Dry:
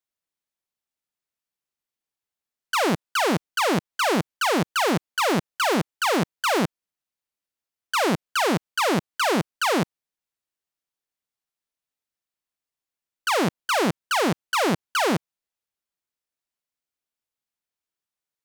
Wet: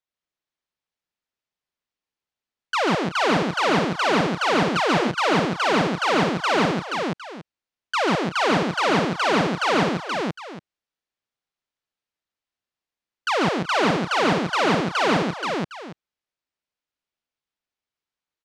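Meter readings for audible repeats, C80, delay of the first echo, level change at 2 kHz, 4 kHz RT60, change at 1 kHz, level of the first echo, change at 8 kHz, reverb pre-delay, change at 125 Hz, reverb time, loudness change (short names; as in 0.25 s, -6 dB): 4, none, 0.14 s, +3.0 dB, none, +3.0 dB, -3.5 dB, -4.5 dB, none, +3.0 dB, none, +2.0 dB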